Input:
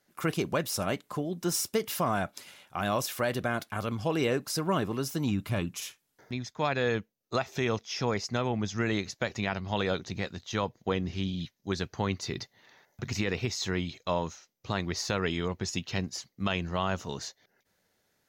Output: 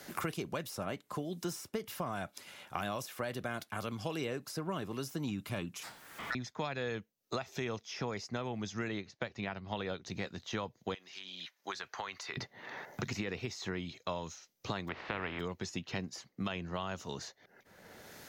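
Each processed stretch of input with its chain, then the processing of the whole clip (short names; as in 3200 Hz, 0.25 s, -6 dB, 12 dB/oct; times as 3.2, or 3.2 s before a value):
5.83–6.35 zero-crossing step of -47 dBFS + ring modulator 1600 Hz
8.88–10.05 air absorption 130 m + upward expander, over -39 dBFS
10.94–12.37 HPF 1000 Hz + compressor, threshold -39 dBFS
14.87–15.39 spectral contrast lowered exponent 0.39 + LPF 2600 Hz 24 dB/oct + upward compressor, threshold -39 dBFS
whole clip: low shelf 70 Hz -6 dB; three-band squash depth 100%; gain -8 dB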